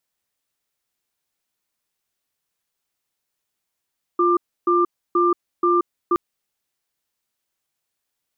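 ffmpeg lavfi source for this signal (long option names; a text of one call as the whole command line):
ffmpeg -f lavfi -i "aevalsrc='0.141*(sin(2*PI*350*t)+sin(2*PI*1190*t))*clip(min(mod(t,0.48),0.18-mod(t,0.48))/0.005,0,1)':duration=1.97:sample_rate=44100" out.wav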